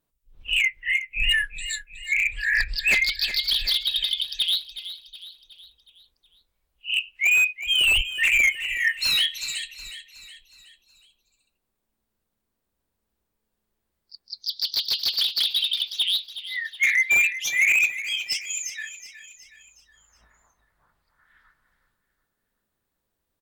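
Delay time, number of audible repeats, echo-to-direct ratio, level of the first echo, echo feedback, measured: 368 ms, 4, -12.0 dB, -13.0 dB, 49%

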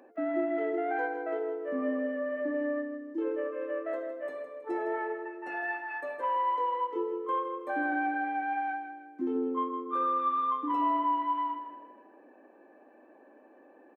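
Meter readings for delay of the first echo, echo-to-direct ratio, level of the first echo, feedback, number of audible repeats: 160 ms, -8.5 dB, -9.5 dB, 40%, 4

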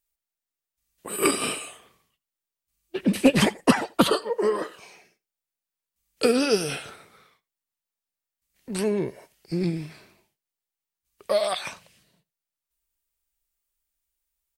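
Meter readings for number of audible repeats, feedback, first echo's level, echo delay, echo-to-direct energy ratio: 1, no regular repeats, -23.0 dB, 84 ms, -23.0 dB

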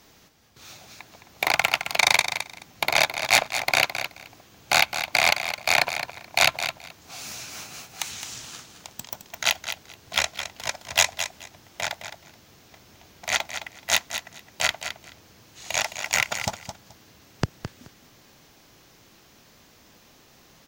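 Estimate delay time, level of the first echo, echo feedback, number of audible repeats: 214 ms, -9.5 dB, 17%, 2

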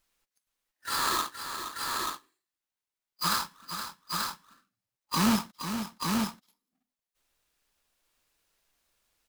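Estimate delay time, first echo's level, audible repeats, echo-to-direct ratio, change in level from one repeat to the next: 470 ms, -9.0 dB, 2, -3.0 dB, no regular repeats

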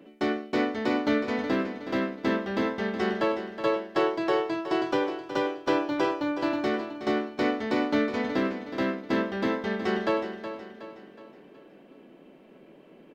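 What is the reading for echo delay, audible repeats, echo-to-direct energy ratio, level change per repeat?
369 ms, 4, -9.5 dB, -6.5 dB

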